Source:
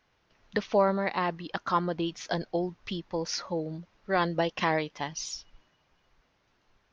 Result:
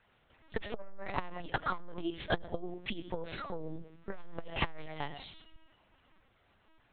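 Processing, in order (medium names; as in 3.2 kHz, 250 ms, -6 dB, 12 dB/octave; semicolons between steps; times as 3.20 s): on a send at -14 dB: reverberation RT60 0.40 s, pre-delay 50 ms; on the sum: LPC vocoder at 8 kHz pitch kept; transformer saturation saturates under 270 Hz; trim +1.5 dB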